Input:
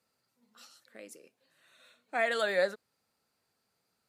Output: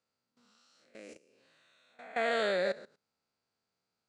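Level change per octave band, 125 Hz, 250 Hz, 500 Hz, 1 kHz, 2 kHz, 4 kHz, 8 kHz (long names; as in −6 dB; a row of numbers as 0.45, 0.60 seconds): can't be measured, +2.5 dB, −1.0 dB, −0.5 dB, −3.0 dB, −0.5 dB, −5.0 dB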